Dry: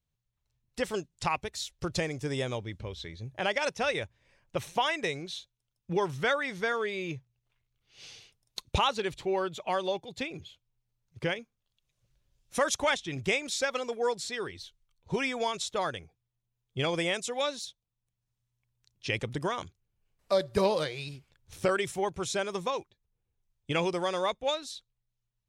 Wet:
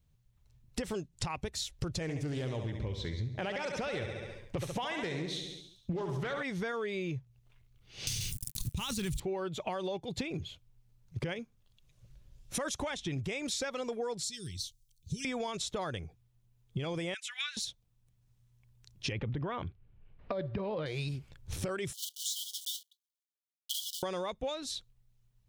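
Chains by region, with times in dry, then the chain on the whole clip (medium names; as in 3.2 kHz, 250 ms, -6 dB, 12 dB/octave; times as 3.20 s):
2.02–6.43 s: feedback delay 69 ms, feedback 58%, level -9.5 dB + loudspeaker Doppler distortion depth 0.26 ms
8.07–9.20 s: companding laws mixed up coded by A + FFT filter 140 Hz 0 dB, 600 Hz -26 dB, 980 Hz -19 dB, 4.5 kHz -7 dB, 9.1 kHz +5 dB + level flattener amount 100%
14.23–15.25 s: Chebyshev band-stop 140–5300 Hz + tilt EQ +2 dB/octave
17.14–17.57 s: elliptic high-pass 1.5 kHz, stop band 80 dB + resonant high shelf 3.7 kHz -7.5 dB, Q 1.5
19.12–20.86 s: low-pass 3.1 kHz 24 dB/octave + compressor with a negative ratio -30 dBFS
21.93–24.03 s: block-companded coder 3-bit + brick-wall FIR high-pass 2.9 kHz + three bands expanded up and down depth 70%
whole clip: bass shelf 320 Hz +9.5 dB; peak limiter -22.5 dBFS; compression 6:1, threshold -40 dBFS; trim +6.5 dB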